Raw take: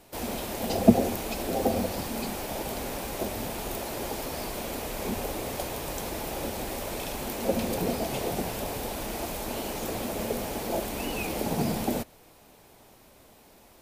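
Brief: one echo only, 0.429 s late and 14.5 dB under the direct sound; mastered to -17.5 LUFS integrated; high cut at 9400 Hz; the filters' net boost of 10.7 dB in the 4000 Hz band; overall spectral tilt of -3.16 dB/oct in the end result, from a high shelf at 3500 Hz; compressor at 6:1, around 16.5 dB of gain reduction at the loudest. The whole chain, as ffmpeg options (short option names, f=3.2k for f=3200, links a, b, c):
-af "lowpass=9.4k,highshelf=f=3.5k:g=8,equalizer=f=4k:t=o:g=8,acompressor=threshold=-31dB:ratio=6,aecho=1:1:429:0.188,volume=15.5dB"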